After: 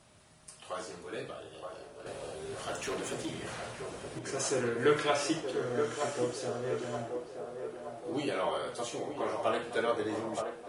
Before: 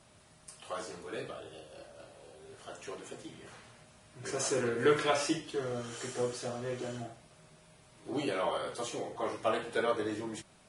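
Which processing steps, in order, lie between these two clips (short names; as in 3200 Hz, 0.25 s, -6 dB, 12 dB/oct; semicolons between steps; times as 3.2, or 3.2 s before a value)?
2.06–4.19 sine folder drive 7 dB, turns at -31 dBFS; narrowing echo 0.923 s, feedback 59%, band-pass 640 Hz, level -4.5 dB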